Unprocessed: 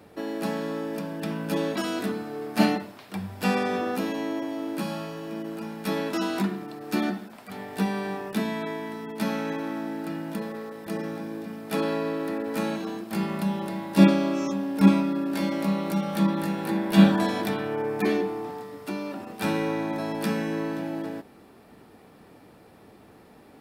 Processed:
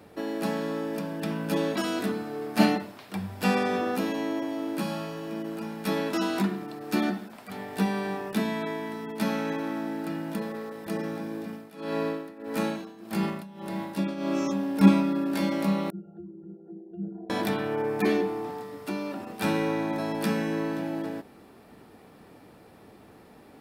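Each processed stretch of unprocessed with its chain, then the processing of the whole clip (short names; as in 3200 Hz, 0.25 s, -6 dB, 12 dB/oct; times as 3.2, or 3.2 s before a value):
11.44–14.44 tremolo 1.7 Hz, depth 92% + sustainer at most 76 dB/s
15.9–17.3 formant sharpening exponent 3 + auto swell 0.136 s + octave resonator F, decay 0.29 s
whole clip: dry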